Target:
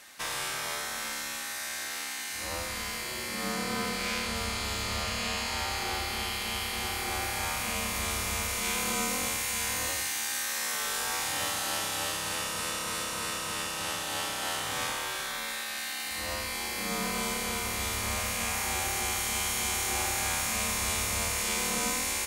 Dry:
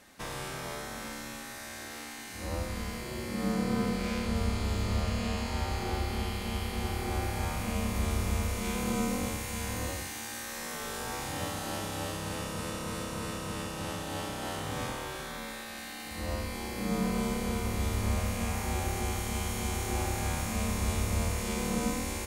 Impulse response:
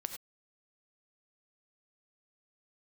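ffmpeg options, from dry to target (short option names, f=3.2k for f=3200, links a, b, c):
-af "tiltshelf=f=640:g=-9"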